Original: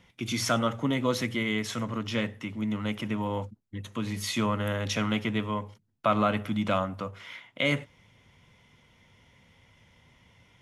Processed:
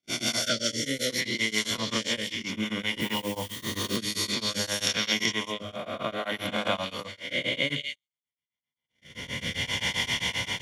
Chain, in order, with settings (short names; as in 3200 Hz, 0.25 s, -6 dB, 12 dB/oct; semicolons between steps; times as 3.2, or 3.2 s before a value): spectral swells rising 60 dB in 1.30 s; recorder AGC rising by 18 dB/s; 0.42–1.1 Chebyshev band-stop 640–1300 Hz, order 5; delay with a stepping band-pass 0.191 s, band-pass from 3600 Hz, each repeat 0.7 oct, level 0 dB; rotary speaker horn 5.5 Hz, later 0.6 Hz, at 2.71; 3–3.96 added noise white -45 dBFS; notch comb 1300 Hz; de-hum 52.37 Hz, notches 13; gate -36 dBFS, range -50 dB; tilt shelf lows -4.5 dB, about 1300 Hz; beating tremolo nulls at 7.6 Hz; gain +2 dB